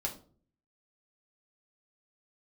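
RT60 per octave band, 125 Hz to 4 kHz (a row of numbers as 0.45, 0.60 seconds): 0.75, 0.65, 0.50, 0.40, 0.30, 0.30 seconds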